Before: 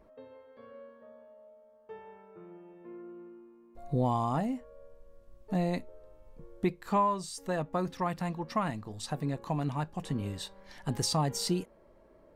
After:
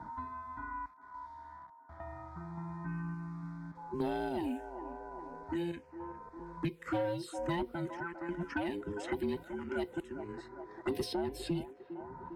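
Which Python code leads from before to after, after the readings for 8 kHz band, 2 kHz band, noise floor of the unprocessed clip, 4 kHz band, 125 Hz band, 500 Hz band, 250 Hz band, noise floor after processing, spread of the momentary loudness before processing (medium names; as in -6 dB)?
-14.5 dB, +2.0 dB, -60 dBFS, -8.5 dB, -8.5 dB, -1.5 dB, -3.0 dB, -57 dBFS, 22 LU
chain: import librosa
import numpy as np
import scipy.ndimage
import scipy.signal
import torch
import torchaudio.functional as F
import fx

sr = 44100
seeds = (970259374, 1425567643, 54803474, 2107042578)

p1 = fx.band_invert(x, sr, width_hz=500)
p2 = fx.tremolo_random(p1, sr, seeds[0], hz=3.5, depth_pct=95)
p3 = fx.low_shelf(p2, sr, hz=97.0, db=7.5)
p4 = fx.quant_dither(p3, sr, seeds[1], bits=12, dither='none')
p5 = scipy.signal.sosfilt(scipy.signal.butter(2, 45.0, 'highpass', fs=sr, output='sos'), p4)
p6 = fx.low_shelf(p5, sr, hz=200.0, db=-7.0)
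p7 = fx.notch(p6, sr, hz=1100.0, q=19.0)
p8 = fx.env_phaser(p7, sr, low_hz=460.0, high_hz=1300.0, full_db=-33.0)
p9 = p8 + fx.echo_wet_bandpass(p8, sr, ms=404, feedback_pct=36, hz=750.0, wet_db=-13.0, dry=0)
p10 = fx.env_lowpass(p9, sr, base_hz=1200.0, full_db=-37.0)
p11 = 10.0 ** (-29.0 / 20.0) * np.tanh(p10 / 10.0 ** (-29.0 / 20.0))
p12 = fx.band_squash(p11, sr, depth_pct=70)
y = p12 * librosa.db_to_amplitude(6.0)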